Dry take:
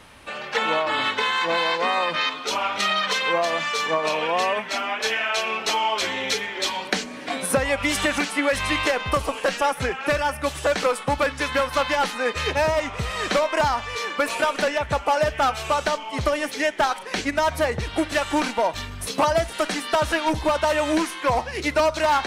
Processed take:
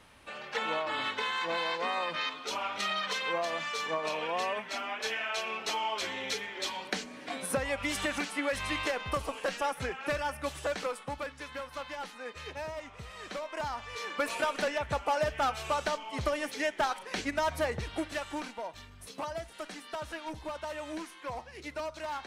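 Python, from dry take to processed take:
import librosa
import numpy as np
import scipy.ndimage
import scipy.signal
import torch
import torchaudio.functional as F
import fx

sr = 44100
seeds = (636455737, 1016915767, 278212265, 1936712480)

y = fx.gain(x, sr, db=fx.line((10.54, -10.0), (11.45, -18.0), (13.36, -18.0), (14.18, -8.5), (17.77, -8.5), (18.6, -17.5)))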